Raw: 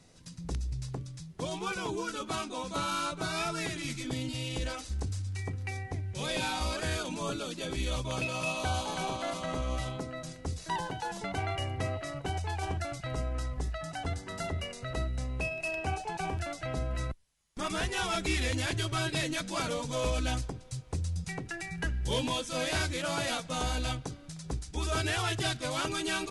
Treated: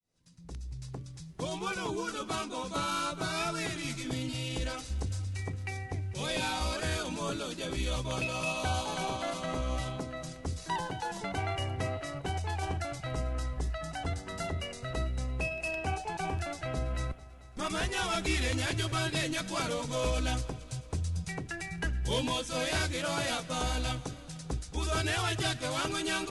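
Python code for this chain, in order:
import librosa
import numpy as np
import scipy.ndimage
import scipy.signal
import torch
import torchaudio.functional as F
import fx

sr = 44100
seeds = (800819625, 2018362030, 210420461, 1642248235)

y = fx.fade_in_head(x, sr, length_s=1.39)
y = fx.echo_heads(y, sr, ms=222, heads='first and second', feedback_pct=51, wet_db=-22.0)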